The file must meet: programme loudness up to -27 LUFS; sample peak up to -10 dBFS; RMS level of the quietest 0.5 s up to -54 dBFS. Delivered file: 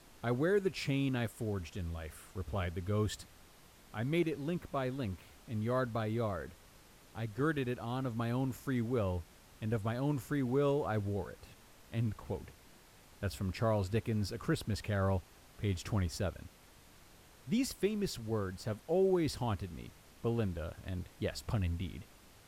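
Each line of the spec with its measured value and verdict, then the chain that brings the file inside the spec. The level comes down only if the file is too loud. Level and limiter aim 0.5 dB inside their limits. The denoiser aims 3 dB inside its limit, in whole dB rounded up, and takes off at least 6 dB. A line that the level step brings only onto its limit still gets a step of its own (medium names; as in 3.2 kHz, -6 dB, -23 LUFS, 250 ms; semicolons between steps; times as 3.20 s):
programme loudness -36.0 LUFS: pass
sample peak -20.0 dBFS: pass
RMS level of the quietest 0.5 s -60 dBFS: pass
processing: none needed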